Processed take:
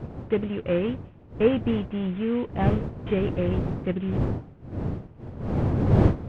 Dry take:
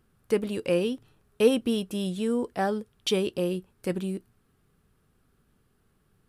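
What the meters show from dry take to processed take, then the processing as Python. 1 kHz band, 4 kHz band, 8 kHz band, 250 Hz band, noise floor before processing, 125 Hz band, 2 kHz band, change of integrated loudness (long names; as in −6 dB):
+2.0 dB, −8.0 dB, below −20 dB, +4.0 dB, −69 dBFS, +13.5 dB, +0.5 dB, +2.0 dB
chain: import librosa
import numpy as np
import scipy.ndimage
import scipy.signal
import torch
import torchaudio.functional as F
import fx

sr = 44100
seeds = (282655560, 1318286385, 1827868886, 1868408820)

y = fx.cvsd(x, sr, bps=16000)
y = fx.dmg_wind(y, sr, seeds[0], corner_hz=350.0, level_db=-32.0)
y = fx.peak_eq(y, sr, hz=100.0, db=10.0, octaves=1.3)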